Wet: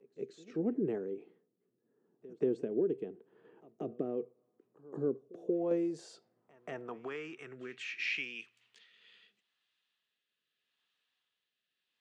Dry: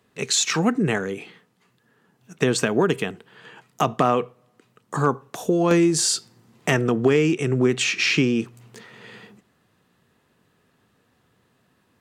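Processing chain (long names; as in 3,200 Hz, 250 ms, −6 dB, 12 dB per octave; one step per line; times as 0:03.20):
dynamic equaliser 1,200 Hz, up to −6 dB, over −38 dBFS, Q 1.1
band-pass filter sweep 370 Hz → 3,300 Hz, 0:05.29–0:08.86
on a send: backwards echo 183 ms −22 dB
on the sum: rotating-speaker cabinet horn 0.8 Hz
level −5 dB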